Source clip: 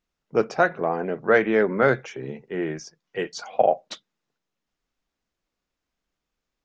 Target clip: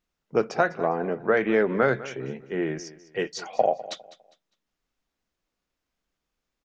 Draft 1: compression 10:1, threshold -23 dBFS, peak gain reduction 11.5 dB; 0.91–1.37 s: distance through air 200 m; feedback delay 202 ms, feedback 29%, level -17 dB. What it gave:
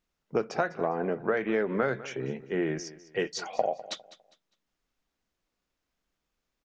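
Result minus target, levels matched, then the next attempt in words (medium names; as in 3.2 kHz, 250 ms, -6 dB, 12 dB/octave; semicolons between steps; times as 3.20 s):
compression: peak gain reduction +6.5 dB
compression 10:1, threshold -15.5 dBFS, peak gain reduction 4.5 dB; 0.91–1.37 s: distance through air 200 m; feedback delay 202 ms, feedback 29%, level -17 dB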